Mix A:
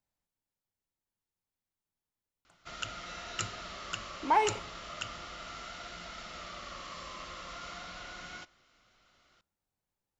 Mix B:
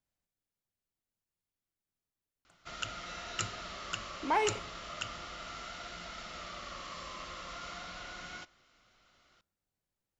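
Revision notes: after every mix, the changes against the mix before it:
speech: add peaking EQ 890 Hz -5.5 dB 0.43 oct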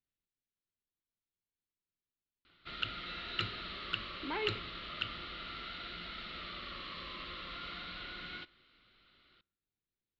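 speech -6.0 dB; master: add FFT filter 160 Hz 0 dB, 380 Hz +3 dB, 700 Hz -10 dB, 1.4 kHz -1 dB, 4.1 kHz +5 dB, 6.2 kHz -28 dB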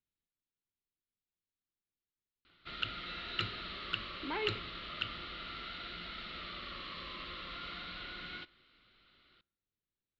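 no change

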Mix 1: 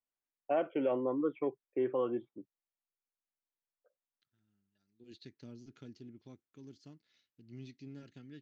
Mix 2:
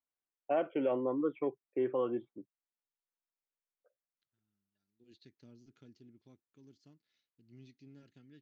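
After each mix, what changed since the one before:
second voice -7.5 dB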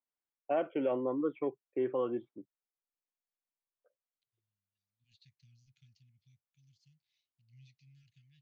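second voice: add elliptic band-stop 140–2300 Hz, stop band 50 dB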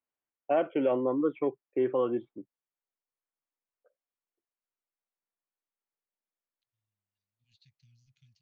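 first voice +5.0 dB; second voice: entry +2.40 s

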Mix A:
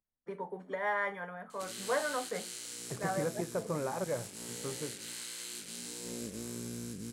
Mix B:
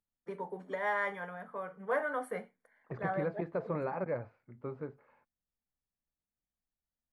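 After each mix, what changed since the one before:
background: muted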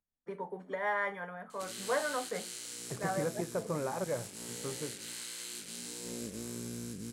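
background: unmuted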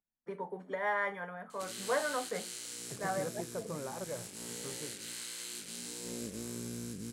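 second voice -6.0 dB

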